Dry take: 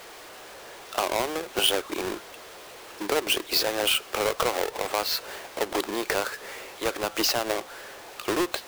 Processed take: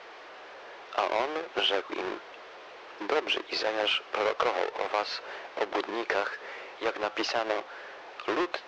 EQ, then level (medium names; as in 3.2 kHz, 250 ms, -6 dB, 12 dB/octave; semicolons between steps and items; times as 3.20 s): steep low-pass 6.2 kHz 36 dB/octave; tone controls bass -9 dB, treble -14 dB; bass shelf 270 Hz -5.5 dB; 0.0 dB